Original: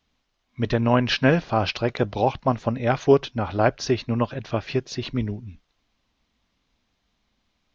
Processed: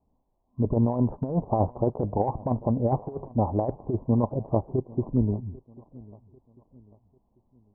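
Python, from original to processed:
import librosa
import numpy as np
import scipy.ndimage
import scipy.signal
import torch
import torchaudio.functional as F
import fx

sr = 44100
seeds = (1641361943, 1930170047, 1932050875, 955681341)

y = scipy.signal.sosfilt(scipy.signal.butter(12, 1000.0, 'lowpass', fs=sr, output='sos'), x)
y = fx.over_compress(y, sr, threshold_db=-22.0, ratio=-0.5)
y = fx.echo_feedback(y, sr, ms=794, feedback_pct=40, wet_db=-22.0)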